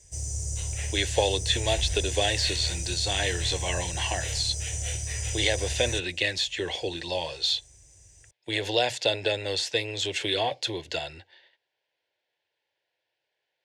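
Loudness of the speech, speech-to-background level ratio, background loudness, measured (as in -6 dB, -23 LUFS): -27.5 LUFS, 4.0 dB, -31.5 LUFS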